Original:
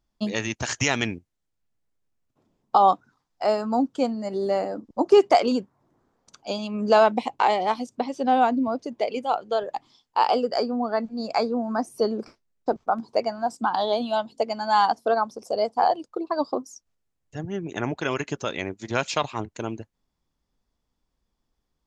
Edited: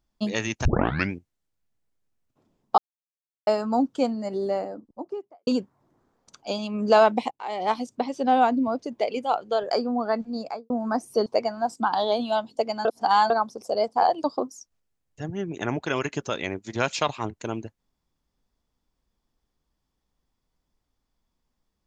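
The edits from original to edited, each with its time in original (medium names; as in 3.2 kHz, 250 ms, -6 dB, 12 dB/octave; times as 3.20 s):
0.65 s: tape start 0.47 s
2.78–3.47 s: mute
4.08–5.47 s: studio fade out
7.31–7.69 s: fade in quadratic, from -24 dB
9.71–10.55 s: delete
11.14–11.54 s: studio fade out
12.10–13.07 s: delete
14.66–15.11 s: reverse
16.05–16.39 s: delete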